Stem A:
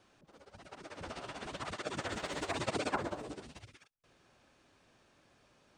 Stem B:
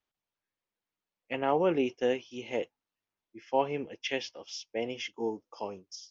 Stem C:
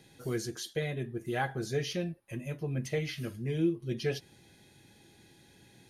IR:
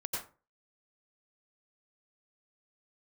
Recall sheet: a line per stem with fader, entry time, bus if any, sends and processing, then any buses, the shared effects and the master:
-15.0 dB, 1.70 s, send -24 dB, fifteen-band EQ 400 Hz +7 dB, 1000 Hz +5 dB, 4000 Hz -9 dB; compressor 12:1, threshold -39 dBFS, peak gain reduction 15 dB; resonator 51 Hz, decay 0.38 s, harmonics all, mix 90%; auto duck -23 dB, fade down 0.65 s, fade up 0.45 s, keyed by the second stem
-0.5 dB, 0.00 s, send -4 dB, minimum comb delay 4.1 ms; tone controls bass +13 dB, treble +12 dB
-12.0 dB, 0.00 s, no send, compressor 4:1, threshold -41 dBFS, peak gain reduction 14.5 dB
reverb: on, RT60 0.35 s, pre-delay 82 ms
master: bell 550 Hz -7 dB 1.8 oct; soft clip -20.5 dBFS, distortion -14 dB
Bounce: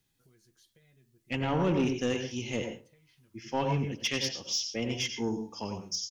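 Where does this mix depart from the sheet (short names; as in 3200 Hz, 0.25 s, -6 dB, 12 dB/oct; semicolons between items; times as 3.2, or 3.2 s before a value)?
stem B: missing minimum comb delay 4.1 ms; stem C -12.0 dB -> -19.0 dB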